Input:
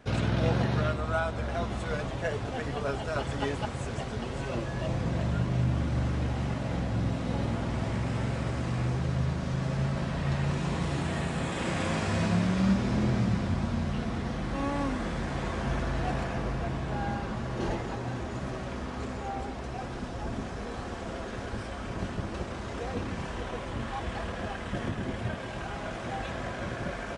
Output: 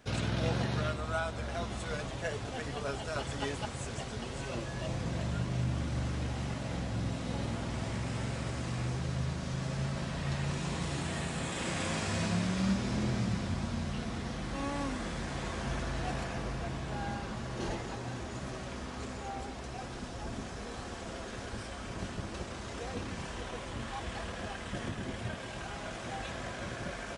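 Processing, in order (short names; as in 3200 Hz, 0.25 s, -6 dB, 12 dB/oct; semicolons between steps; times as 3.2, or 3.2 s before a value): high shelf 3300 Hz +10 dB; gain -5.5 dB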